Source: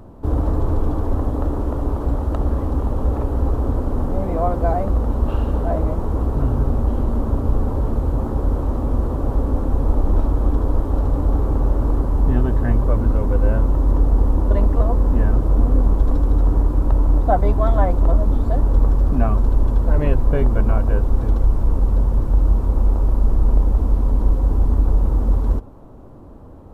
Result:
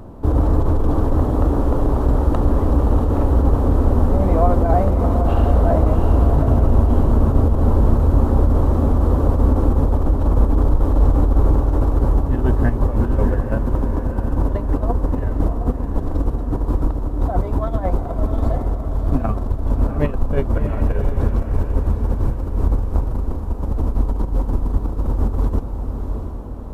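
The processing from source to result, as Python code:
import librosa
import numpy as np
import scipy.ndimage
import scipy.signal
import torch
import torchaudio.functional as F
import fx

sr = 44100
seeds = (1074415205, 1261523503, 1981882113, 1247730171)

p1 = fx.over_compress(x, sr, threshold_db=-17.0, ratio=-0.5)
p2 = p1 + fx.echo_diffused(p1, sr, ms=691, feedback_pct=45, wet_db=-6.0, dry=0)
y = p2 * librosa.db_to_amplitude(1.5)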